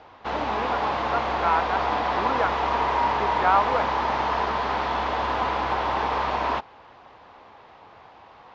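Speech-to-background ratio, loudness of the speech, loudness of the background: -2.5 dB, -27.5 LUFS, -25.0 LUFS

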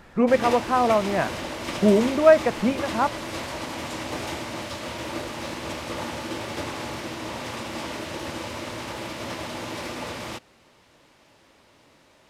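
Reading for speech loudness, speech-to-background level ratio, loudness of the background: -21.5 LUFS, 10.5 dB, -32.0 LUFS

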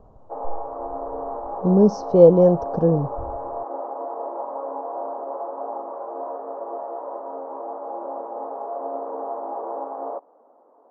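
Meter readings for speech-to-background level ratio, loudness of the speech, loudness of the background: 14.5 dB, -17.0 LUFS, -31.5 LUFS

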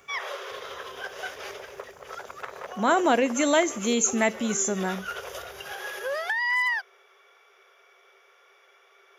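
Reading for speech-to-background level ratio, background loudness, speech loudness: 8.5 dB, -32.5 LUFS, -24.0 LUFS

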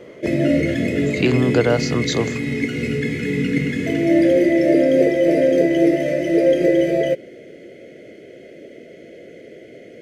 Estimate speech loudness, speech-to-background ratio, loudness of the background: -20.5 LUFS, -2.0 dB, -18.5 LUFS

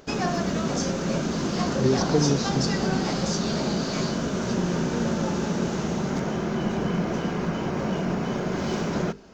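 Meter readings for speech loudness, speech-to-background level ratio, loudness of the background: -26.5 LUFS, 0.0 dB, -26.5 LUFS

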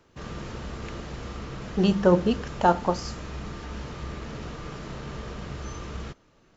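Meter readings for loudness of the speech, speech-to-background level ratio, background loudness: -24.0 LUFS, 14.0 dB, -38.0 LUFS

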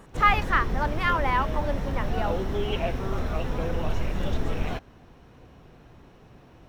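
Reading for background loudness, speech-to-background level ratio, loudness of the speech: -30.5 LUFS, 4.0 dB, -26.5 LUFS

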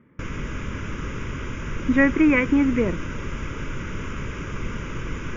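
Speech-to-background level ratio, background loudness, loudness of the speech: 11.5 dB, -32.0 LUFS, -20.5 LUFS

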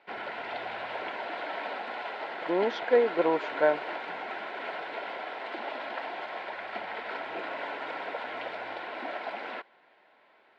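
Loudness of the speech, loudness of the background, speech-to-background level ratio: -27.5 LUFS, -36.5 LUFS, 9.0 dB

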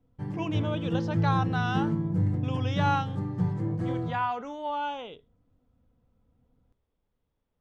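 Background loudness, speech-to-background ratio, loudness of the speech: -29.5 LUFS, -3.0 dB, -32.5 LUFS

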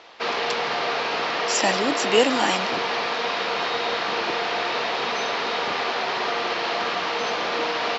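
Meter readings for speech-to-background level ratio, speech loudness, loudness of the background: 0.5 dB, -24.0 LUFS, -24.5 LUFS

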